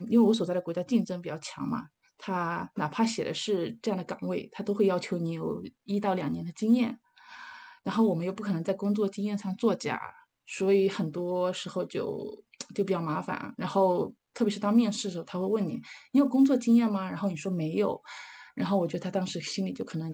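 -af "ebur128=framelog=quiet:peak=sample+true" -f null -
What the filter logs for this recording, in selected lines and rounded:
Integrated loudness:
  I:         -29.3 LUFS
  Threshold: -39.7 LUFS
Loudness range:
  LRA:         4.6 LU
  Threshold: -49.7 LUFS
  LRA low:   -31.6 LUFS
  LRA high:  -27.0 LUFS
Sample peak:
  Peak:      -12.5 dBFS
True peak:
  Peak:      -12.5 dBFS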